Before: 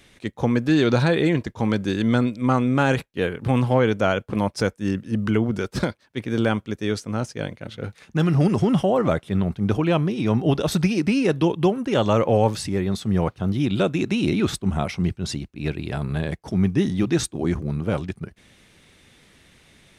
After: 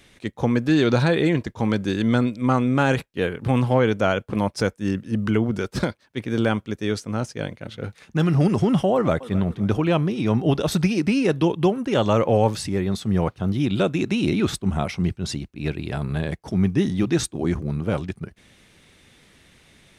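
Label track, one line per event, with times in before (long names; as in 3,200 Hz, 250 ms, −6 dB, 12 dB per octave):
8.940000	9.350000	delay throw 260 ms, feedback 45%, level −17 dB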